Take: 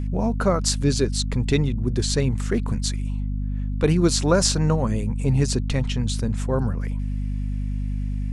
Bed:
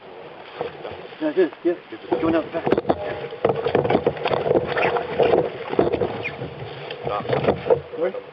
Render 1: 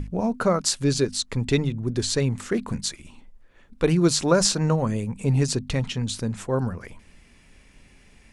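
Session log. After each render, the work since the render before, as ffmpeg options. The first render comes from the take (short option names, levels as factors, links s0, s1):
-af "bandreject=f=50:t=h:w=6,bandreject=f=100:t=h:w=6,bandreject=f=150:t=h:w=6,bandreject=f=200:t=h:w=6,bandreject=f=250:t=h:w=6"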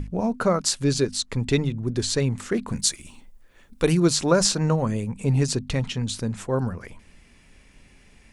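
-filter_complex "[0:a]asettb=1/sr,asplit=3[s0][s1][s2];[s0]atrim=end=2.754[s3];[s1]atrim=start=2.75:end=4,asetpts=PTS-STARTPTS,afade=t=in:d=0.004:c=qsin,afade=t=out:st=1.246:d=0.004:c=qsin,aemphasis=mode=production:type=50kf[s4];[s2]atrim=start=3.996[s5];[s3][s4]acrossfade=d=0.004:c1=hsin:c2=qsin[s6];[s6][s5]acrossfade=d=0.004:c1=qsin:c2=hsin"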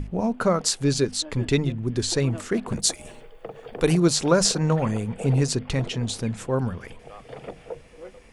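-filter_complex "[1:a]volume=0.119[s0];[0:a][s0]amix=inputs=2:normalize=0"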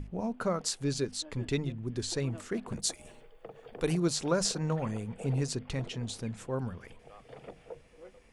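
-af "volume=0.335"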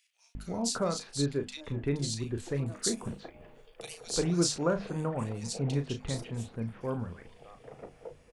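-filter_complex "[0:a]asplit=2[s0][s1];[s1]adelay=35,volume=0.376[s2];[s0][s2]amix=inputs=2:normalize=0,acrossover=split=2400[s3][s4];[s3]adelay=350[s5];[s5][s4]amix=inputs=2:normalize=0"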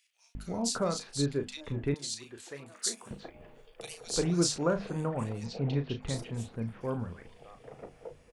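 -filter_complex "[0:a]asettb=1/sr,asplit=3[s0][s1][s2];[s0]atrim=end=1.944[s3];[s1]atrim=start=1.94:end=3.11,asetpts=PTS-STARTPTS,afade=t=in:d=0.004:c=qsin,afade=t=out:st=1.166:d=0.004:c=qsin,highpass=f=1300:p=1[s4];[s2]atrim=start=3.106[s5];[s3][s4]acrossfade=d=0.004:c1=hsin:c2=qsin[s6];[s6][s5]acrossfade=d=0.004:c1=qsin:c2=hsin,asplit=3[s7][s8][s9];[s7]afade=t=out:st=5.44:d=0.02[s10];[s8]lowpass=f=4300:w=0.5412,lowpass=f=4300:w=1.3066,afade=t=in:st=5.44:d=0.02,afade=t=out:st=6.01:d=0.02[s11];[s9]afade=t=in:st=6.01:d=0.02[s12];[s10][s11][s12]amix=inputs=3:normalize=0"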